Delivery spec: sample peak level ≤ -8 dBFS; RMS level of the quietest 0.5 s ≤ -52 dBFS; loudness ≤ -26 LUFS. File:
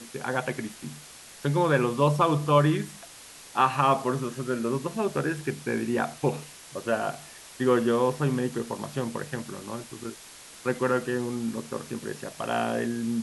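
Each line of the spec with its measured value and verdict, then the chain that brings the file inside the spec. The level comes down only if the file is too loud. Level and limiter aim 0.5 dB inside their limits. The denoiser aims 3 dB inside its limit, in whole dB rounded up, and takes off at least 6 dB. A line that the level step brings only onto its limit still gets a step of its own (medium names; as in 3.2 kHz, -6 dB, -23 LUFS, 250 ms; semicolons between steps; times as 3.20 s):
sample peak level -9.0 dBFS: pass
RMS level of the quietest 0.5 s -47 dBFS: fail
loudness -27.5 LUFS: pass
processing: noise reduction 8 dB, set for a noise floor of -47 dBFS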